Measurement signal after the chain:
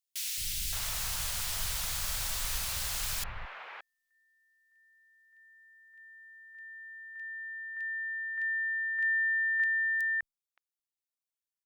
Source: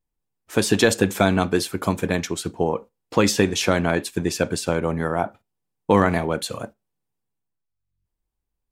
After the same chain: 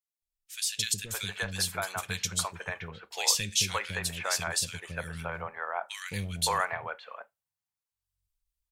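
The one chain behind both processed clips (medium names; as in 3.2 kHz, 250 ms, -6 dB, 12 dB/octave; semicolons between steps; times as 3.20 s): amplifier tone stack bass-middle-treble 10-0-10; gain riding within 4 dB 2 s; three bands offset in time highs, lows, mids 220/570 ms, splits 370/2200 Hz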